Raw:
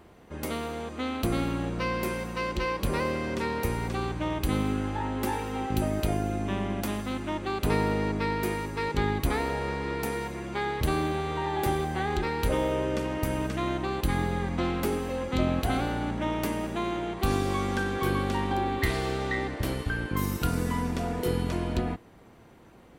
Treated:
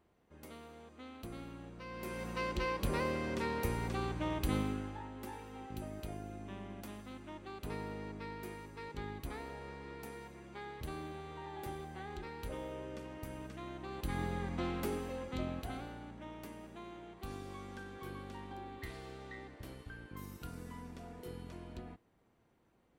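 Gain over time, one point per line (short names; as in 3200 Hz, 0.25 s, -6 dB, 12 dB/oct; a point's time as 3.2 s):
1.84 s -19 dB
2.28 s -6.5 dB
4.57 s -6.5 dB
5.1 s -16.5 dB
13.73 s -16.5 dB
14.24 s -9 dB
15 s -9 dB
16.1 s -19 dB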